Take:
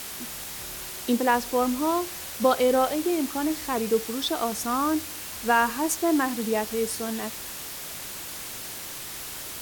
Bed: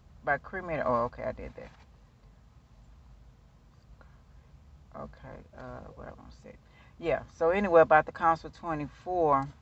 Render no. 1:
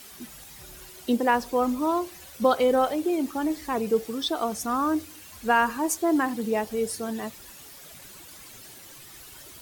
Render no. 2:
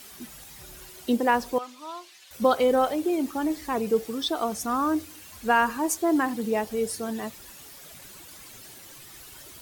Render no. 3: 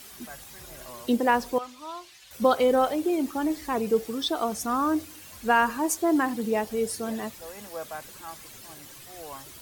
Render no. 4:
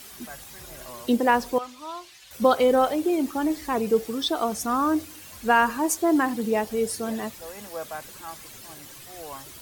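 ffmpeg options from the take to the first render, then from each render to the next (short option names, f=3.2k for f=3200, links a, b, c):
-af "afftdn=nr=12:nf=-37"
-filter_complex "[0:a]asettb=1/sr,asplit=3[a][b][c];[a]atrim=end=1.584[d];[b]atrim=start=1.58:end=2.31,asetpts=PTS-STARTPTS,afade=t=in:d=0.004:c=qsin,afade=t=out:st=0.726:d=0.004:c=qsin,bandpass=f=3.5k:t=q:w=0.99[e];[c]atrim=start=2.306[f];[d][e]acrossfade=d=0.004:c1=hsin:c2=qsin[g];[g][f]acrossfade=d=0.004:c1=qsin:c2=hsin"
-filter_complex "[1:a]volume=-17dB[a];[0:a][a]amix=inputs=2:normalize=0"
-af "volume=2dB"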